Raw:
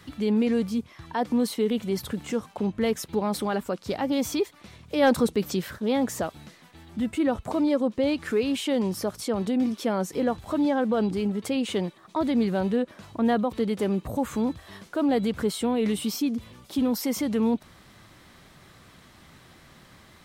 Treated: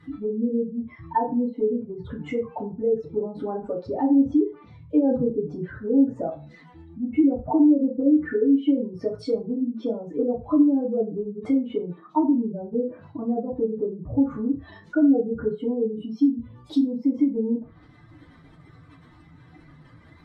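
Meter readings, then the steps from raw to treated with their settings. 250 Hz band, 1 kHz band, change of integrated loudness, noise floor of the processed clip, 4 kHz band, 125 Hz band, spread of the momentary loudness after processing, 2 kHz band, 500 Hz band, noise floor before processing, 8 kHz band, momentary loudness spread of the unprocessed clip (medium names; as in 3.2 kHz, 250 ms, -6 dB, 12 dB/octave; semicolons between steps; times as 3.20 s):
+3.5 dB, -1.5 dB, +2.5 dB, -51 dBFS, under -10 dB, -3.0 dB, 11 LU, -8.5 dB, +0.5 dB, -54 dBFS, under -25 dB, 7 LU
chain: spectral contrast enhancement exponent 2.1; low-pass that closes with the level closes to 410 Hz, closed at -22.5 dBFS; FDN reverb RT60 0.34 s, low-frequency decay 0.7×, high-frequency decay 0.65×, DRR -6 dB; trim -3 dB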